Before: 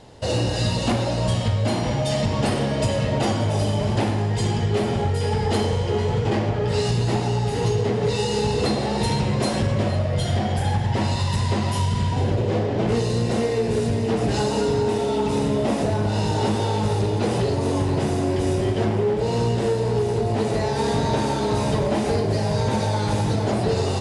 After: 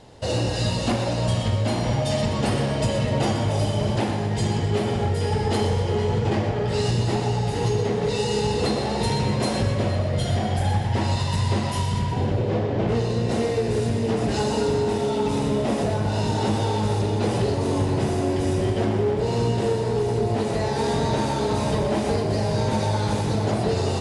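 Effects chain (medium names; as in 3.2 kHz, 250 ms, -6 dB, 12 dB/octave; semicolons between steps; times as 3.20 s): 11.99–13.29 s: treble shelf 6.7 kHz -12 dB; two-band feedback delay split 490 Hz, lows 608 ms, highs 123 ms, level -10 dB; trim -1.5 dB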